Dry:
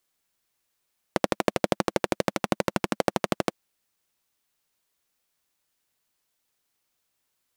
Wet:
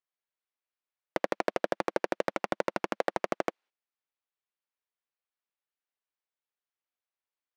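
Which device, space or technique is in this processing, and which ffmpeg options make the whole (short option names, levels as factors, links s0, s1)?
walkie-talkie: -af "highpass=410,lowpass=3000,asoftclip=type=hard:threshold=0.178,agate=range=0.2:threshold=0.00158:ratio=16:detection=peak"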